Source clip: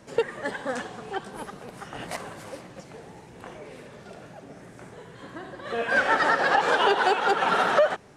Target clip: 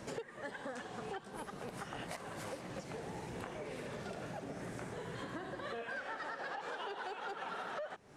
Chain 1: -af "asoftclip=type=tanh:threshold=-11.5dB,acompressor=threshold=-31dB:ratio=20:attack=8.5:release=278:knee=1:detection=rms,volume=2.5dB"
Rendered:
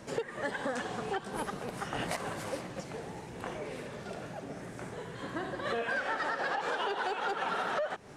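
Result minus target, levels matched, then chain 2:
downward compressor: peak gain reduction −9.5 dB
-af "asoftclip=type=tanh:threshold=-11.5dB,acompressor=threshold=-41dB:ratio=20:attack=8.5:release=278:knee=1:detection=rms,volume=2.5dB"

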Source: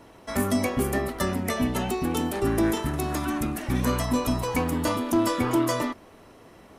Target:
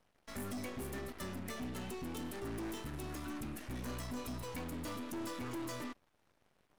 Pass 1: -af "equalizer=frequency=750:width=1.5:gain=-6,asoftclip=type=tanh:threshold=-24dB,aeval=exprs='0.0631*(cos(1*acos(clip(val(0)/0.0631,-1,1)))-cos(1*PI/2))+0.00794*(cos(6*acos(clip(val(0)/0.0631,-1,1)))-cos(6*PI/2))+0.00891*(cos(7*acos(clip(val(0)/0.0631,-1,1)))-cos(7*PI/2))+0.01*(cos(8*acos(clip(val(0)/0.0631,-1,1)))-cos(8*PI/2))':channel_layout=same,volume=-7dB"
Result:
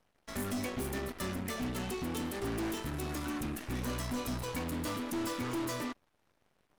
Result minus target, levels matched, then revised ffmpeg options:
soft clipping: distortion −6 dB
-af "equalizer=frequency=750:width=1.5:gain=-6,asoftclip=type=tanh:threshold=-31.5dB,aeval=exprs='0.0631*(cos(1*acos(clip(val(0)/0.0631,-1,1)))-cos(1*PI/2))+0.00794*(cos(6*acos(clip(val(0)/0.0631,-1,1)))-cos(6*PI/2))+0.00891*(cos(7*acos(clip(val(0)/0.0631,-1,1)))-cos(7*PI/2))+0.01*(cos(8*acos(clip(val(0)/0.0631,-1,1)))-cos(8*PI/2))':channel_layout=same,volume=-7dB"

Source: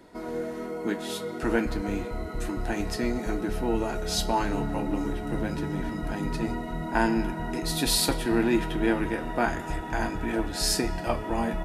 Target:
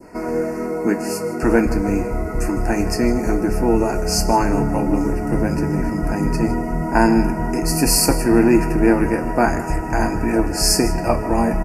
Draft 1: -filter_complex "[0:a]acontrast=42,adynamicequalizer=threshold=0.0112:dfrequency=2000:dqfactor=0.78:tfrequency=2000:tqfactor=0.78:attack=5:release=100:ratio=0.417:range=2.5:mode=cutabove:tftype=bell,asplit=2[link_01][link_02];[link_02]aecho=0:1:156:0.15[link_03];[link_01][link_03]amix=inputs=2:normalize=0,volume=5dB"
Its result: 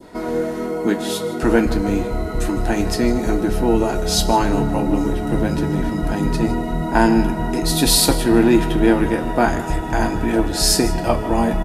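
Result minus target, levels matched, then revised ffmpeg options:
4,000 Hz band +3.5 dB
-filter_complex "[0:a]acontrast=42,adynamicequalizer=threshold=0.0112:dfrequency=2000:dqfactor=0.78:tfrequency=2000:tqfactor=0.78:attack=5:release=100:ratio=0.417:range=2.5:mode=cutabove:tftype=bell,asuperstop=centerf=3500:order=12:qfactor=2,asplit=2[link_01][link_02];[link_02]aecho=0:1:156:0.15[link_03];[link_01][link_03]amix=inputs=2:normalize=0,volume=5dB"

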